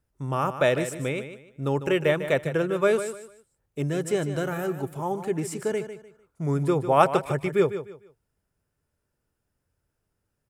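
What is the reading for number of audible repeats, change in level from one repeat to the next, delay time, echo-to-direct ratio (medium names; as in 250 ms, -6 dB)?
3, -11.5 dB, 150 ms, -10.5 dB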